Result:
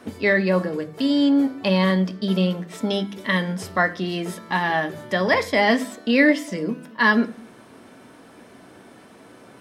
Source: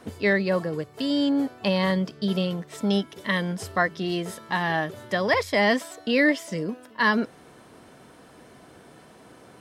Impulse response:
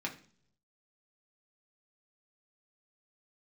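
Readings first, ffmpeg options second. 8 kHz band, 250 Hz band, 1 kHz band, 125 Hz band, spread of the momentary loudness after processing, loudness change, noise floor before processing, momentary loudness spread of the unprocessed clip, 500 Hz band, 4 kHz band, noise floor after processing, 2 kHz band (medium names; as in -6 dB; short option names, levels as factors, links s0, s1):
+1.0 dB, +4.5 dB, +3.0 dB, +3.5 dB, 9 LU, +3.5 dB, -51 dBFS, 8 LU, +2.5 dB, +2.5 dB, -48 dBFS, +3.5 dB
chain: -filter_complex "[0:a]asplit=2[s0][s1];[1:a]atrim=start_sample=2205[s2];[s1][s2]afir=irnorm=-1:irlink=0,volume=0.75[s3];[s0][s3]amix=inputs=2:normalize=0,volume=0.794"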